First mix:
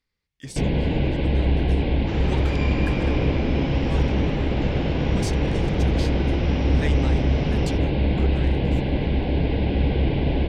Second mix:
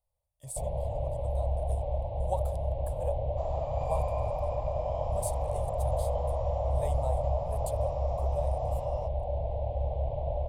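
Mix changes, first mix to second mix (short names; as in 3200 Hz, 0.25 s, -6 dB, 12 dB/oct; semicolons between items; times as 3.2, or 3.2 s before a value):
first sound -9.5 dB; second sound: entry +1.30 s; master: add EQ curve 110 Hz 0 dB, 240 Hz -27 dB, 400 Hz -18 dB, 600 Hz +13 dB, 1100 Hz -5 dB, 1500 Hz -30 dB, 2300 Hz -22 dB, 3700 Hz -17 dB, 5700 Hz -19 dB, 9200 Hz +7 dB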